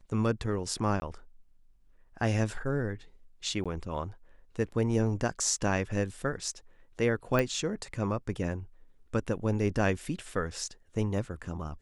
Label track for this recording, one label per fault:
1.000000	1.020000	dropout 20 ms
3.640000	3.660000	dropout 16 ms
7.390000	7.390000	pop -15 dBFS

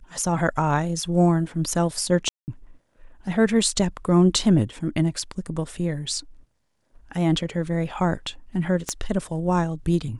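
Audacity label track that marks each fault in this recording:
2.290000	2.480000	dropout 189 ms
8.890000	8.890000	pop -11 dBFS

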